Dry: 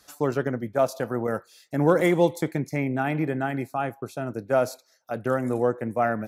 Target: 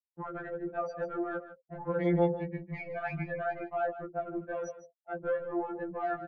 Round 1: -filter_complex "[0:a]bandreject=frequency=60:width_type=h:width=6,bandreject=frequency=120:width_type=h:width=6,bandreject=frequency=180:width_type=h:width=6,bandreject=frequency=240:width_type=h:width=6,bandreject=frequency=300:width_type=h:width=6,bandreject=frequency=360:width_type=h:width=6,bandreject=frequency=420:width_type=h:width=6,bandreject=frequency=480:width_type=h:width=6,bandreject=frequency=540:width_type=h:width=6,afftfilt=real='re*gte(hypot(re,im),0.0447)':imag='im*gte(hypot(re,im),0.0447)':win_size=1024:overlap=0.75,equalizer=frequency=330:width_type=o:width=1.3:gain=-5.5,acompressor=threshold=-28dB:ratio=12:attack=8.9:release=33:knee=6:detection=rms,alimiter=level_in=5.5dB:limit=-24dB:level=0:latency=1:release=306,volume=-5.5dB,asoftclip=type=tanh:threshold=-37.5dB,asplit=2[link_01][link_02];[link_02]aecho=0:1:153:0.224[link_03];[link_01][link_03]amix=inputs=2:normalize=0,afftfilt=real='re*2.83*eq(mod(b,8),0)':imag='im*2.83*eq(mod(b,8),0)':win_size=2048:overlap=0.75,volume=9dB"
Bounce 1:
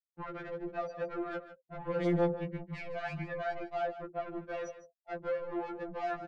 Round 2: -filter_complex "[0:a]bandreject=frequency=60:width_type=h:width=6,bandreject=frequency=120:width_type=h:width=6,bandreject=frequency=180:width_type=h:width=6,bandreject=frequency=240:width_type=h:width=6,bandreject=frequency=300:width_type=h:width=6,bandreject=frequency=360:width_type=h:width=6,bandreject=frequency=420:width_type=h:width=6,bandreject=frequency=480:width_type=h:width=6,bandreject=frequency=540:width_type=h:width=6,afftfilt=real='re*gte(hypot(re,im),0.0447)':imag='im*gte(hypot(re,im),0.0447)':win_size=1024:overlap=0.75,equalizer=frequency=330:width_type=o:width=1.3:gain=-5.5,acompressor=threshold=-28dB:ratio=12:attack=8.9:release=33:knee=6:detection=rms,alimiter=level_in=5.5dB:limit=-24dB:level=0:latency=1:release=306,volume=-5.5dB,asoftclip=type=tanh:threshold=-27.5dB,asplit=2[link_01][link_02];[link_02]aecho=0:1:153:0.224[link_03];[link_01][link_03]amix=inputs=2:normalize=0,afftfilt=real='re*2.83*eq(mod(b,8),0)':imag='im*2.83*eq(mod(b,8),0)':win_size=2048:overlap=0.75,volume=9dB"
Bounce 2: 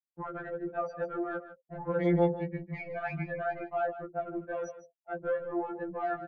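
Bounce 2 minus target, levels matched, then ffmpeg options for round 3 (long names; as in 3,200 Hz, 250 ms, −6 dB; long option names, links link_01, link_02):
downward compressor: peak gain reduction −5.5 dB
-filter_complex "[0:a]bandreject=frequency=60:width_type=h:width=6,bandreject=frequency=120:width_type=h:width=6,bandreject=frequency=180:width_type=h:width=6,bandreject=frequency=240:width_type=h:width=6,bandreject=frequency=300:width_type=h:width=6,bandreject=frequency=360:width_type=h:width=6,bandreject=frequency=420:width_type=h:width=6,bandreject=frequency=480:width_type=h:width=6,bandreject=frequency=540:width_type=h:width=6,afftfilt=real='re*gte(hypot(re,im),0.0447)':imag='im*gte(hypot(re,im),0.0447)':win_size=1024:overlap=0.75,equalizer=frequency=330:width_type=o:width=1.3:gain=-5.5,acompressor=threshold=-34dB:ratio=12:attack=8.9:release=33:knee=6:detection=rms,alimiter=level_in=5.5dB:limit=-24dB:level=0:latency=1:release=306,volume=-5.5dB,asoftclip=type=tanh:threshold=-27.5dB,asplit=2[link_01][link_02];[link_02]aecho=0:1:153:0.224[link_03];[link_01][link_03]amix=inputs=2:normalize=0,afftfilt=real='re*2.83*eq(mod(b,8),0)':imag='im*2.83*eq(mod(b,8),0)':win_size=2048:overlap=0.75,volume=9dB"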